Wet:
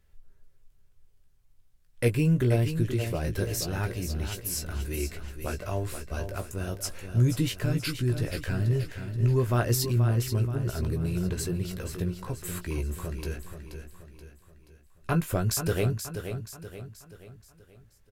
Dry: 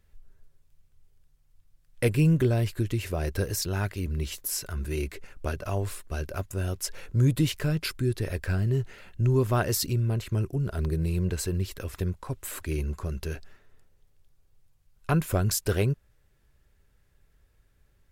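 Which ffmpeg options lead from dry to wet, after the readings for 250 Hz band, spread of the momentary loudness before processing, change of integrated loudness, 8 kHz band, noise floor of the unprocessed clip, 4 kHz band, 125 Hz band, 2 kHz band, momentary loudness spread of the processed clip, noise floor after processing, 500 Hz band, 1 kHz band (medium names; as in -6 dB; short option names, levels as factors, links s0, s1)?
-0.5 dB, 11 LU, -0.5 dB, -0.5 dB, -65 dBFS, -0.5 dB, 0.0 dB, -0.5 dB, 13 LU, -60 dBFS, -0.5 dB, -1.0 dB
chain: -filter_complex "[0:a]asplit=2[s0][s1];[s1]adelay=17,volume=0.447[s2];[s0][s2]amix=inputs=2:normalize=0,asplit=2[s3][s4];[s4]aecho=0:1:479|958|1437|1916|2395:0.376|0.169|0.0761|0.0342|0.0154[s5];[s3][s5]amix=inputs=2:normalize=0,volume=0.794"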